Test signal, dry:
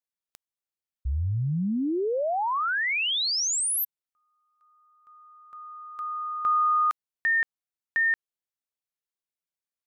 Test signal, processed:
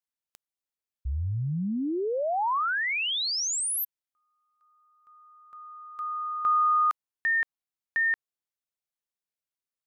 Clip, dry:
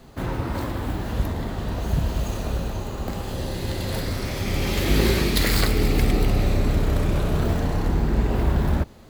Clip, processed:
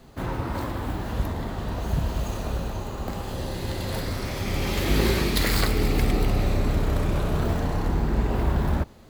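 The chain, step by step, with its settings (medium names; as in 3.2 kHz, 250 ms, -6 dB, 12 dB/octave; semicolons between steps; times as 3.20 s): dynamic bell 1 kHz, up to +3 dB, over -40 dBFS, Q 1.2; trim -2.5 dB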